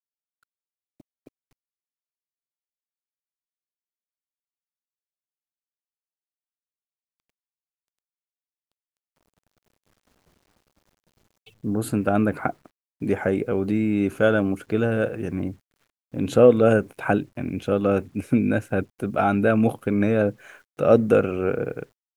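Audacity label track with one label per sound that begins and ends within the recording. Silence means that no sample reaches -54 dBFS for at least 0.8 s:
1.000000	1.280000	sound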